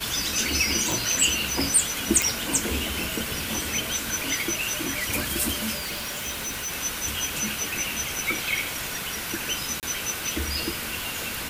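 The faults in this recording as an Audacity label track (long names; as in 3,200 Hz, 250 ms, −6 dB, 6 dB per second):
0.920000	0.920000	click
2.220000	2.220000	click
5.770000	6.730000	clipping −27.5 dBFS
9.800000	9.830000	drop-out 28 ms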